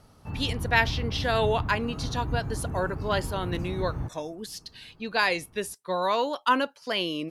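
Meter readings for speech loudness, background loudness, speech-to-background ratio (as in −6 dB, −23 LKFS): −28.5 LKFS, −34.0 LKFS, 5.5 dB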